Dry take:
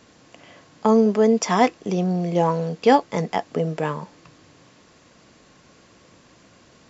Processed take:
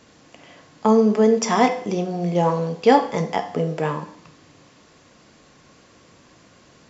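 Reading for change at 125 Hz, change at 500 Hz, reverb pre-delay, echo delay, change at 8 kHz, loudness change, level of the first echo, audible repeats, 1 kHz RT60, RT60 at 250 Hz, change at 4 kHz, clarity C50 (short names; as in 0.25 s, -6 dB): 0.0 dB, +1.0 dB, 10 ms, none, n/a, +0.5 dB, none, none, 0.60 s, 0.55 s, +1.0 dB, 11.0 dB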